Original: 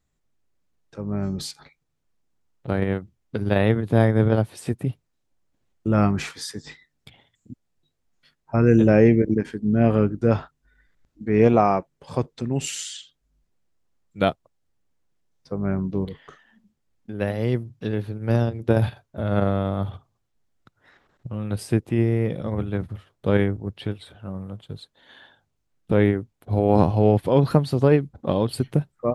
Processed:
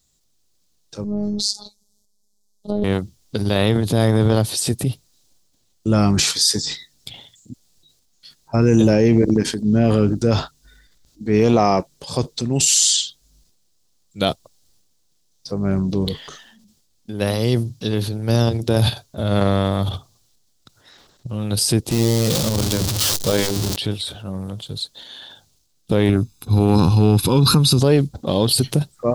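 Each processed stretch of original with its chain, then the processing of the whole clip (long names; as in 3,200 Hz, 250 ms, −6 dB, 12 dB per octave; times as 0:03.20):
0:01.04–0:02.84: treble cut that deepens with the level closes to 2,600 Hz, closed at −21 dBFS + phases set to zero 207 Hz + Butterworth band-reject 2,000 Hz, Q 0.55
0:21.91–0:23.76: converter with a step at zero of −25 dBFS + mains-hum notches 50/100/150/200/250/300/350/400/450 Hz + saturating transformer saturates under 290 Hz
0:26.09–0:27.80: comb filter 0.8 ms, depth 97% + downward compressor 2 to 1, threshold −16 dBFS
whole clip: high shelf with overshoot 3,000 Hz +13 dB, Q 1.5; brickwall limiter −9.5 dBFS; transient designer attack −1 dB, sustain +7 dB; level +4.5 dB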